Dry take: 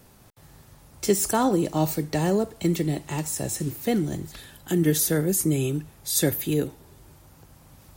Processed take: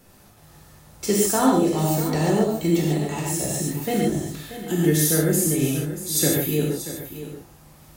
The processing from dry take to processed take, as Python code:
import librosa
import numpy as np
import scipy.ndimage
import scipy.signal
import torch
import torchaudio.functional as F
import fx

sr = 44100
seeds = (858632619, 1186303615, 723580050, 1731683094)

p1 = x + fx.echo_single(x, sr, ms=634, db=-12.5, dry=0)
p2 = fx.rev_gated(p1, sr, seeds[0], gate_ms=170, shape='flat', drr_db=-4.0)
y = F.gain(torch.from_numpy(p2), -2.0).numpy()